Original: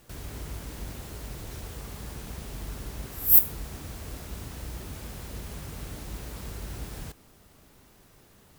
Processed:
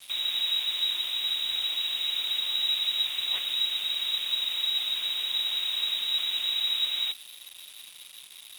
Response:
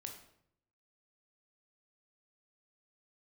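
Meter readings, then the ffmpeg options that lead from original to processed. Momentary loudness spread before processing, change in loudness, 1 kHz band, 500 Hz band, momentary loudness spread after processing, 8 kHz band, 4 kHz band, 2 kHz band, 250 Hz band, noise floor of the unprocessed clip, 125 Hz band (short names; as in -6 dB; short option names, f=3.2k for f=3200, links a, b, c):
16 LU, +2.0 dB, -1.0 dB, under -10 dB, 18 LU, -3.5 dB, +26.0 dB, +10.0 dB, under -15 dB, -58 dBFS, under -25 dB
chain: -af "lowpass=f=3.3k:t=q:w=0.5098,lowpass=f=3.3k:t=q:w=0.6013,lowpass=f=3.3k:t=q:w=0.9,lowpass=f=3.3k:t=q:w=2.563,afreqshift=-3900,acrusher=bits=8:mix=0:aa=0.5,aexciter=amount=1.6:drive=7.5:freq=2.3k,volume=5dB"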